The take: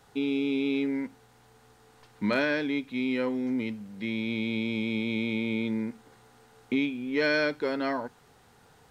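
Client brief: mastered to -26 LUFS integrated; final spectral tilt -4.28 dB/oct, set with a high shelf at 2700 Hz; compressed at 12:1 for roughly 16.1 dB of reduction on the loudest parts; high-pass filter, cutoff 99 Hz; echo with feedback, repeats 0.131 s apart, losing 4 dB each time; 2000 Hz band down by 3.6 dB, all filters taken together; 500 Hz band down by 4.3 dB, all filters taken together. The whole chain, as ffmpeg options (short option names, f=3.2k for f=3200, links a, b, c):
-af "highpass=99,equalizer=f=500:t=o:g=-5,equalizer=f=2k:t=o:g=-3,highshelf=f=2.7k:g=-3.5,acompressor=threshold=-41dB:ratio=12,aecho=1:1:131|262|393|524|655|786|917|1048|1179:0.631|0.398|0.25|0.158|0.0994|0.0626|0.0394|0.0249|0.0157,volume=17.5dB"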